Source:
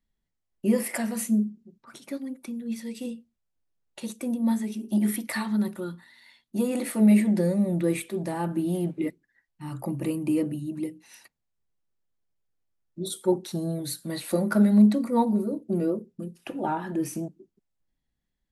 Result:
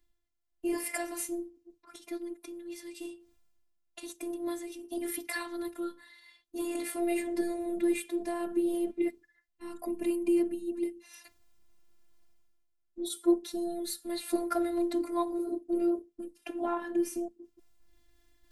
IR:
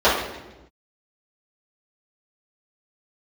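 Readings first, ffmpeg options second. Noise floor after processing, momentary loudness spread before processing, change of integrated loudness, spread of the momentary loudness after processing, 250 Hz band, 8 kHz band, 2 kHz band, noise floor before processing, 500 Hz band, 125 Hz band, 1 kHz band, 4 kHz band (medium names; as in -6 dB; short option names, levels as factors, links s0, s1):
-75 dBFS, 17 LU, -6.5 dB, 14 LU, -8.0 dB, -3.5 dB, -4.0 dB, -81 dBFS, -2.5 dB, under -30 dB, -5.0 dB, -3.5 dB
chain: -af "areverse,acompressor=mode=upward:threshold=0.00631:ratio=2.5,areverse,afftfilt=real='hypot(re,im)*cos(PI*b)':imag='0':win_size=512:overlap=0.75"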